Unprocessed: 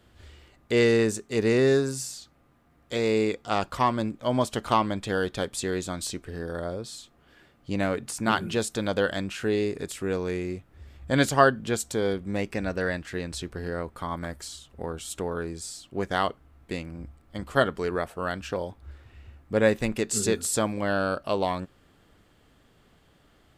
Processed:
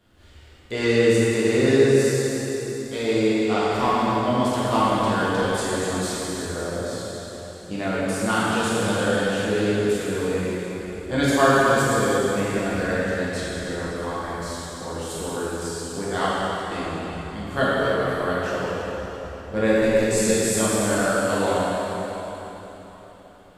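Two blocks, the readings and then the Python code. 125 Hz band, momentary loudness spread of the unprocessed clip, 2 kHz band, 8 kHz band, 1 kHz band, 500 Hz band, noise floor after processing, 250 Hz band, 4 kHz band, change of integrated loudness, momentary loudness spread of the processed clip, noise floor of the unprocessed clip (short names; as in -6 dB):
+4.5 dB, 14 LU, +5.5 dB, +4.5 dB, +5.0 dB, +5.0 dB, -44 dBFS, +5.5 dB, +5.0 dB, +4.5 dB, 13 LU, -61 dBFS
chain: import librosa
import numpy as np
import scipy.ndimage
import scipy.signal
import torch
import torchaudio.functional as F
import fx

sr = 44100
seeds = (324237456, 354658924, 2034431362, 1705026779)

y = fx.rev_plate(x, sr, seeds[0], rt60_s=4.0, hf_ratio=0.9, predelay_ms=0, drr_db=-9.5)
y = y * librosa.db_to_amplitude(-5.0)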